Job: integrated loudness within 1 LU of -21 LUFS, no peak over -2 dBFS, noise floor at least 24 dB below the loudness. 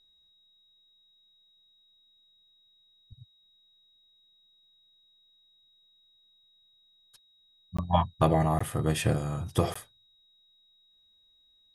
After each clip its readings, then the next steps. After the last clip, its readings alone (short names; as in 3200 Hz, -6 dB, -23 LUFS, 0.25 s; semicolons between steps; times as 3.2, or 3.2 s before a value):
dropouts 3; longest dropout 15 ms; steady tone 3800 Hz; tone level -62 dBFS; loudness -28.5 LUFS; peak -8.5 dBFS; loudness target -21.0 LUFS
-> interpolate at 7.77/8.59/9.74, 15 ms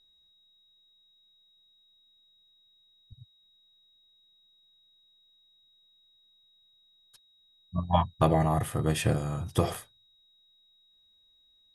dropouts 0; steady tone 3800 Hz; tone level -62 dBFS
-> notch 3800 Hz, Q 30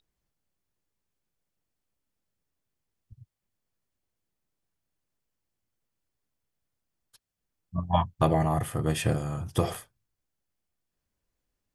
steady tone none; loudness -28.5 LUFS; peak -8.5 dBFS; loudness target -21.0 LUFS
-> gain +7.5 dB; limiter -2 dBFS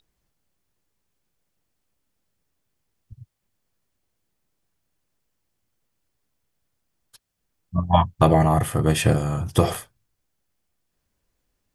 loudness -21.0 LUFS; peak -2.0 dBFS; noise floor -77 dBFS